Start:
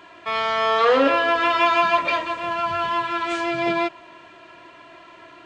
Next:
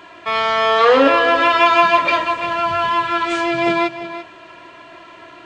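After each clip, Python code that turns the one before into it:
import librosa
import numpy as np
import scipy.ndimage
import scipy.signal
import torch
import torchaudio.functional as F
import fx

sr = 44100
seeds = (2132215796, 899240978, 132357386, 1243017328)

y = x + 10.0 ** (-12.5 / 20.0) * np.pad(x, (int(343 * sr / 1000.0), 0))[:len(x)]
y = F.gain(torch.from_numpy(y), 5.0).numpy()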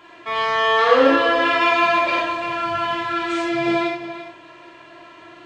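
y = fx.rev_gated(x, sr, seeds[0], gate_ms=120, shape='flat', drr_db=-2.0)
y = F.gain(torch.from_numpy(y), -7.5).numpy()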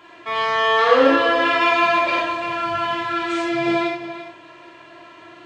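y = scipy.signal.sosfilt(scipy.signal.butter(2, 41.0, 'highpass', fs=sr, output='sos'), x)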